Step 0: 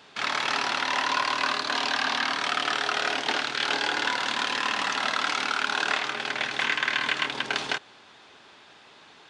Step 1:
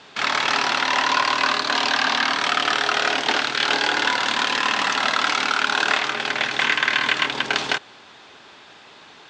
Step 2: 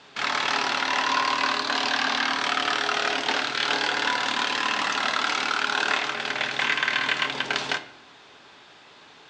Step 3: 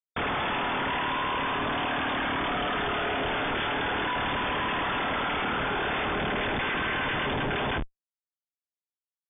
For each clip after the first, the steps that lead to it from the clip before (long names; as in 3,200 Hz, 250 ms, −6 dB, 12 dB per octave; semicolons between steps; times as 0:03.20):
Butterworth low-pass 8,400 Hz 48 dB per octave; level +6 dB
convolution reverb RT60 0.70 s, pre-delay 7 ms, DRR 9.5 dB; level −4.5 dB
comparator with hysteresis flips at −31.5 dBFS; linear-phase brick-wall low-pass 3,600 Hz; level −1.5 dB